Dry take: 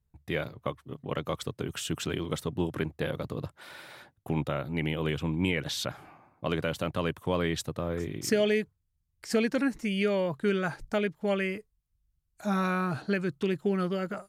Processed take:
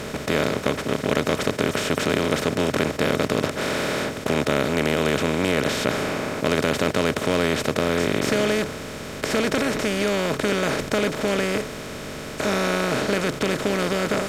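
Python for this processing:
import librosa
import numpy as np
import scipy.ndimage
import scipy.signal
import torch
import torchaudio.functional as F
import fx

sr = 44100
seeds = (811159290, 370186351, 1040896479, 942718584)

y = fx.bin_compress(x, sr, power=0.2)
y = F.gain(torch.from_numpy(y), -2.0).numpy()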